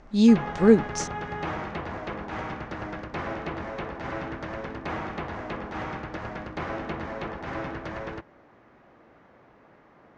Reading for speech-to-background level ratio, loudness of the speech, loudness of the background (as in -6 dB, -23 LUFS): 14.5 dB, -20.0 LUFS, -34.5 LUFS